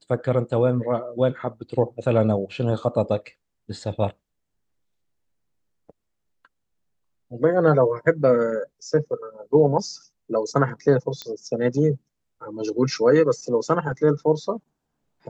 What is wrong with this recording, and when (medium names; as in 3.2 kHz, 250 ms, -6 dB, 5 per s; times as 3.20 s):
11.22 s: pop -16 dBFS